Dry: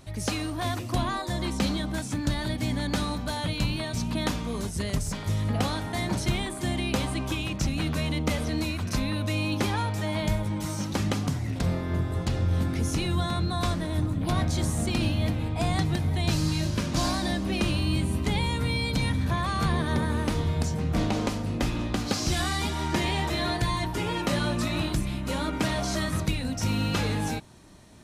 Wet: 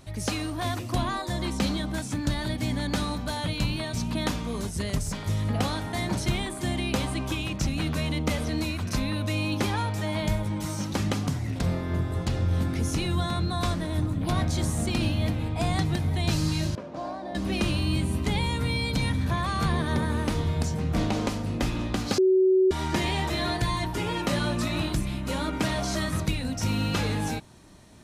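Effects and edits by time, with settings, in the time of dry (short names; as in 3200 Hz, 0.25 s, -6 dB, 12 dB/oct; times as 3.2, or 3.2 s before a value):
16.75–17.35 band-pass 600 Hz, Q 1.7
22.18–22.71 bleep 376 Hz -16.5 dBFS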